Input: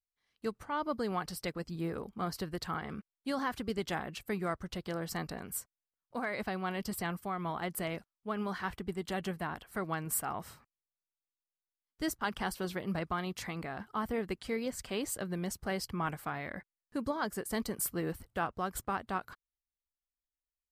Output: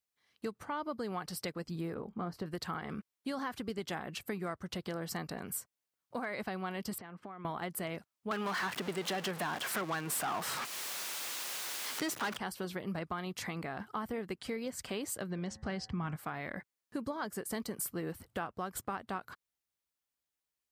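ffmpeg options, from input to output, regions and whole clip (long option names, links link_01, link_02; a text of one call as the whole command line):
ffmpeg -i in.wav -filter_complex "[0:a]asettb=1/sr,asplit=3[link_01][link_02][link_03];[link_01]atrim=end=1.944[link_04];[link_02]atrim=start=1.94:end=2.46,asetpts=PTS-STARTPTS,afade=type=in:duration=0.004:curve=qsin,afade=type=out:start_time=0.516:duration=0.004:curve=qsin,equalizer=frequency=12000:width_type=o:width=3:gain=-15,asplit=2[link_05][link_06];[link_06]adelay=23,volume=-13dB[link_07];[link_05][link_07]amix=inputs=2:normalize=0,atrim=end_sample=22932[link_08];[link_03]atrim=start=2.456[link_09];[link_04][link_08]acrossfade=duration=0.004:curve1=hsin:curve2=qsin[link_10];[link_10][link_09]acrossfade=duration=0.004:curve1=qsin:curve2=hsin,asettb=1/sr,asplit=3[link_11][link_12][link_13];[link_11]atrim=end=6.984[link_14];[link_12]atrim=start=6.98:end=7.45,asetpts=PTS-STARTPTS,afade=type=in:duration=0.004:curve=qsin,afade=type=out:start_time=0.466:duration=0.004:curve=qsin,highpass=160,lowpass=2600,acompressor=threshold=-47dB:ratio=20:attack=3.2:release=140:knee=1:detection=peak[link_15];[link_13]atrim=start=7.446[link_16];[link_14][link_15]acrossfade=duration=0.004:curve1=hsin:curve2=qsin[link_17];[link_17][link_16]acrossfade=duration=0.004:curve1=qsin:curve2=hsin,asettb=1/sr,asplit=3[link_18][link_19][link_20];[link_18]atrim=end=8.314[link_21];[link_19]atrim=start=8.31:end=12.37,asetpts=PTS-STARTPTS,afade=type=in:duration=0.004:curve=qsin,afade=type=out:start_time=4.056:duration=0.004:curve=qsin,aeval=exprs='val(0)+0.5*0.00794*sgn(val(0))':channel_layout=same,asplit=2[link_22][link_23];[link_23]highpass=frequency=720:poles=1,volume=21dB,asoftclip=type=tanh:threshold=-20dB[link_24];[link_22][link_24]amix=inputs=2:normalize=0,lowpass=frequency=6500:poles=1,volume=-6dB,highpass=110[link_25];[link_20]atrim=start=12.366[link_26];[link_21][link_25]acrossfade=duration=0.004:curve1=hsin:curve2=qsin[link_27];[link_27][link_26]acrossfade=duration=0.004:curve1=qsin:curve2=hsin,asettb=1/sr,asplit=3[link_28][link_29][link_30];[link_28]atrim=end=15.304[link_31];[link_29]atrim=start=15.3:end=16.16,asetpts=PTS-STARTPTS,afade=type=in:duration=0.004:curve=qsin,afade=type=out:start_time=0.856:duration=0.004:curve=qsin,lowpass=frequency=6700:width=0.5412,lowpass=frequency=6700:width=1.3066,asubboost=boost=11:cutoff=230,bandreject=frequency=108.5:width_type=h:width=4,bandreject=frequency=217:width_type=h:width=4,bandreject=frequency=325.5:width_type=h:width=4,bandreject=frequency=434:width_type=h:width=4,bandreject=frequency=542.5:width_type=h:width=4,bandreject=frequency=651:width_type=h:width=4,bandreject=frequency=759.5:width_type=h:width=4,bandreject=frequency=868:width_type=h:width=4,bandreject=frequency=976.5:width_type=h:width=4,bandreject=frequency=1085:width_type=h:width=4,bandreject=frequency=1193.5:width_type=h:width=4,bandreject=frequency=1302:width_type=h:width=4,bandreject=frequency=1410.5:width_type=h:width=4,bandreject=frequency=1519:width_type=h:width=4,bandreject=frequency=1627.5:width_type=h:width=4,bandreject=frequency=1736:width_type=h:width=4,bandreject=frequency=1844.5:width_type=h:width=4,bandreject=frequency=1953:width_type=h:width=4[link_32];[link_30]atrim=start=16.156[link_33];[link_31][link_32]acrossfade=duration=0.004:curve1=hsin:curve2=qsin[link_34];[link_34][link_33]acrossfade=duration=0.004:curve1=qsin:curve2=hsin,highpass=92,acompressor=threshold=-43dB:ratio=3,volume=5.5dB" out.wav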